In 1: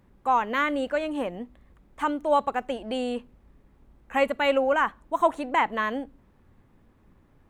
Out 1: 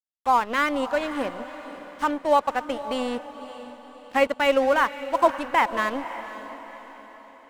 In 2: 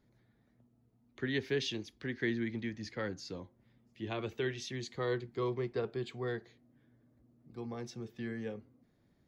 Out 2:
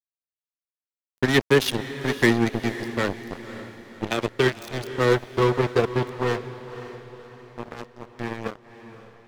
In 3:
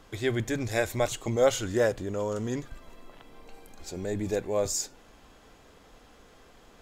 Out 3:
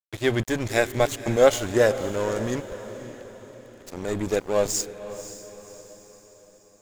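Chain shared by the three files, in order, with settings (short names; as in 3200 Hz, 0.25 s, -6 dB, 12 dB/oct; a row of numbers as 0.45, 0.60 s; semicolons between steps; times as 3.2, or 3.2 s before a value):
crossover distortion -37.5 dBFS; diffused feedback echo 0.538 s, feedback 47%, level -13 dB; match loudness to -24 LUFS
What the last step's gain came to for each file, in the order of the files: +3.5, +19.0, +7.0 dB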